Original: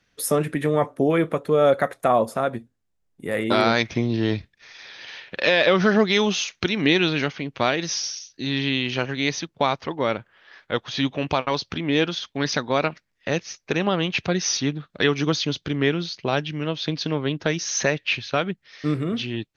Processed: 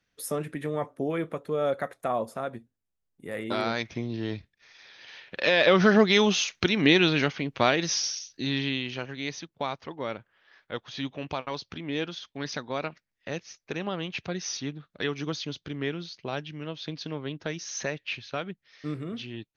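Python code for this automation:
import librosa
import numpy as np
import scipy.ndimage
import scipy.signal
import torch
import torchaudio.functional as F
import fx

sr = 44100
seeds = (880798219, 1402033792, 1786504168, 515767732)

y = fx.gain(x, sr, db=fx.line((4.98, -9.5), (5.77, -1.0), (8.35, -1.0), (9.01, -10.0)))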